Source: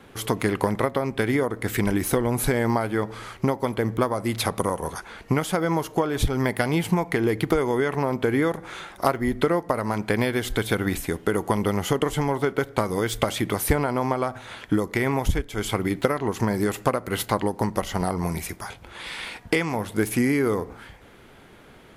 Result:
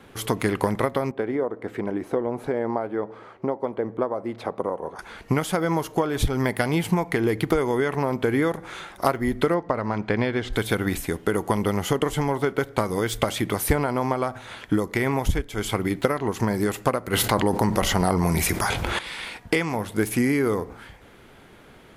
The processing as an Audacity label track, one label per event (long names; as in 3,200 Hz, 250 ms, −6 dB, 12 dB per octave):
1.110000	4.990000	resonant band-pass 520 Hz, Q 0.93
9.540000	10.530000	high-frequency loss of the air 140 metres
17.130000	18.990000	envelope flattener amount 70%